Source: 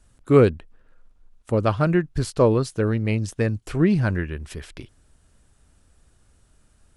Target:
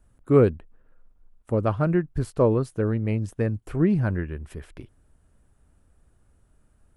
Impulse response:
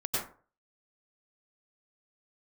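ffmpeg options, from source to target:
-af "equalizer=f=4900:t=o:w=2.2:g=-12.5,volume=0.794"

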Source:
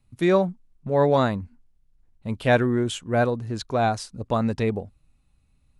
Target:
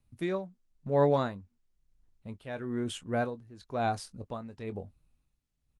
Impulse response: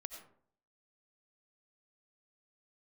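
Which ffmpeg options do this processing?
-filter_complex "[0:a]asplit=2[s0][s1];[s1]adelay=21,volume=0.251[s2];[s0][s2]amix=inputs=2:normalize=0,tremolo=f=1:d=0.82,volume=0.501" -ar 48000 -c:a libopus -b:a 32k

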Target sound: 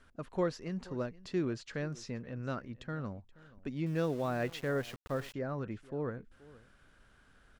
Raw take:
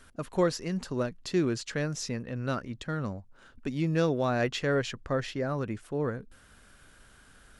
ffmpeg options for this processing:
-filter_complex "[0:a]aemphasis=mode=reproduction:type=50fm,aecho=1:1:477:0.0944,asettb=1/sr,asplit=3[s0][s1][s2];[s0]atrim=end=3.864[s3];[s1]atrim=start=3.86:end=5.34,asetpts=PTS-STARTPTS,afade=t=in:d=0.004:c=qsin,afade=t=out:st=1.476:d=0.004:c=qsin,aeval=exprs='val(0)*gte(abs(val(0)),0.01)':c=same[s4];[s2]atrim=start=5.336[s5];[s3][s4]acrossfade=d=0.004:c1=hsin:c2=qsin[s6];[s6][s5]acrossfade=d=0.004:c1=qsin:c2=hsin,volume=0.473"

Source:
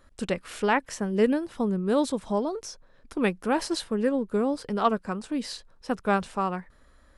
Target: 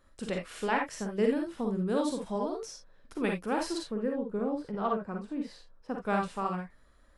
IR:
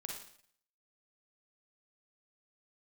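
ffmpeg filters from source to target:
-filter_complex "[0:a]asplit=3[s0][s1][s2];[s0]afade=t=out:st=3.77:d=0.02[s3];[s1]equalizer=f=9100:t=o:w=3:g=-15,afade=t=in:st=3.77:d=0.02,afade=t=out:st=6.03:d=0.02[s4];[s2]afade=t=in:st=6.03:d=0.02[s5];[s3][s4][s5]amix=inputs=3:normalize=0[s6];[1:a]atrim=start_sample=2205,atrim=end_sample=3969[s7];[s6][s7]afir=irnorm=-1:irlink=0,volume=0.794"

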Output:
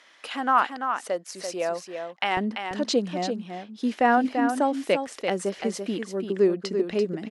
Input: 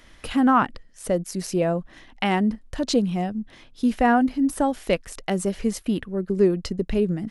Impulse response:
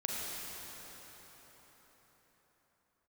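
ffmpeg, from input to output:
-af "asetnsamples=n=441:p=0,asendcmd='2.37 highpass f 300',highpass=610,lowpass=7300,aecho=1:1:339:0.447"

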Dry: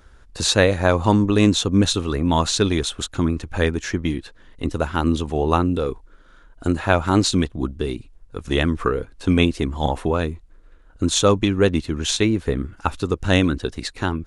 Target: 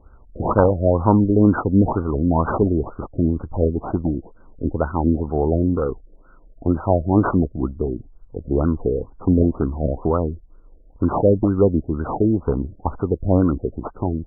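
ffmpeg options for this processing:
-af "acrusher=samples=12:mix=1:aa=0.000001:lfo=1:lforange=12:lforate=0.57,lowpass=f=5600:t=q:w=1.7,afftfilt=real='re*lt(b*sr/1024,660*pow(1600/660,0.5+0.5*sin(2*PI*2.1*pts/sr)))':imag='im*lt(b*sr/1024,660*pow(1600/660,0.5+0.5*sin(2*PI*2.1*pts/sr)))':win_size=1024:overlap=0.75,volume=1.19"

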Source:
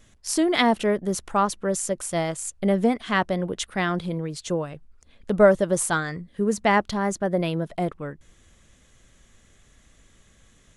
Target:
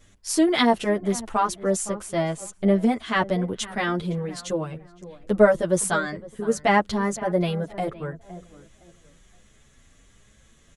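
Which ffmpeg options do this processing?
-filter_complex "[0:a]asettb=1/sr,asplit=3[s0][s1][s2];[s0]atrim=end=1.844[s3];[s1]atrim=start=1.84:end=2.76,asetpts=PTS-STARTPTS,afade=t=in:d=0.004:c=qsin,afade=t=out:st=0.916:d=0.004:c=qsin,highshelf=f=5300:g=-8[s4];[s2]atrim=start=2.756[s5];[s3][s4]acrossfade=d=0.004:c1=hsin:c2=qsin[s6];[s6][s5]acrossfade=d=0.004:c1=qsin:c2=hsin,asplit=2[s7][s8];[s8]adelay=513,lowpass=f=1500:p=1,volume=0.158,asplit=2[s9][s10];[s10]adelay=513,lowpass=f=1500:p=1,volume=0.3,asplit=2[s11][s12];[s12]adelay=513,lowpass=f=1500:p=1,volume=0.3[s13];[s7][s9][s11][s13]amix=inputs=4:normalize=0,asplit=2[s14][s15];[s15]adelay=8.2,afreqshift=1.2[s16];[s14][s16]amix=inputs=2:normalize=1,volume=1.41"

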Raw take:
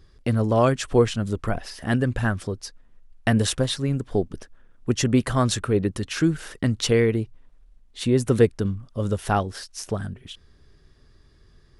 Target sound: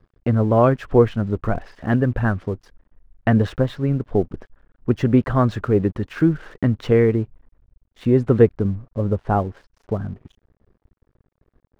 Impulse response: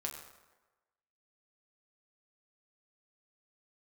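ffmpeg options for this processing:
-af "asetnsamples=n=441:p=0,asendcmd='8.59 lowpass f 1000',lowpass=1600,aeval=exprs='sgn(val(0))*max(abs(val(0))-0.00266,0)':c=same,volume=1.58"

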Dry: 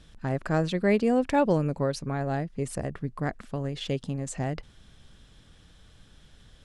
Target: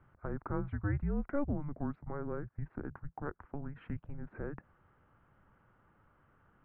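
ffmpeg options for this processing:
-af "asubboost=boost=6:cutoff=58,highpass=f=170:t=q:w=0.5412,highpass=f=170:t=q:w=1.307,lowpass=f=2000:t=q:w=0.5176,lowpass=f=2000:t=q:w=0.7071,lowpass=f=2000:t=q:w=1.932,afreqshift=-290,acompressor=threshold=0.0112:ratio=1.5,volume=0.75"

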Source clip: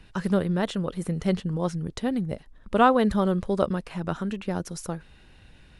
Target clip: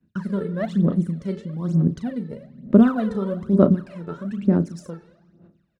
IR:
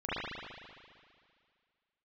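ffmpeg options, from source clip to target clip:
-filter_complex "[0:a]highpass=170,equalizer=f=230:t=q:w=4:g=5,equalizer=f=480:t=q:w=4:g=-7,equalizer=f=830:t=q:w=4:g=-10,equalizer=f=1600:t=q:w=4:g=3,equalizer=f=2900:t=q:w=4:g=-3,lowpass=f=9200:w=0.5412,lowpass=f=9200:w=1.3066,agate=range=0.0224:threshold=0.00501:ratio=3:detection=peak,tiltshelf=f=660:g=8.5,asplit=2[s0][s1];[s1]adelay=36,volume=0.376[s2];[s0][s2]amix=inputs=2:normalize=0,asplit=2[s3][s4];[1:a]atrim=start_sample=2205,asetrate=57330,aresample=44100[s5];[s4][s5]afir=irnorm=-1:irlink=0,volume=0.133[s6];[s3][s6]amix=inputs=2:normalize=0,aphaser=in_gain=1:out_gain=1:delay=2.3:decay=0.78:speed=1.1:type=sinusoidal,volume=0.531"

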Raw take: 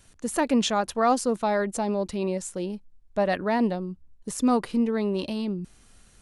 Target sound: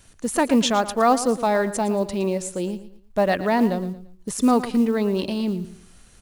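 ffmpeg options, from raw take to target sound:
-af "acrusher=bits=8:mode=log:mix=0:aa=0.000001,aecho=1:1:114|228|342:0.2|0.0658|0.0217,volume=1.58"

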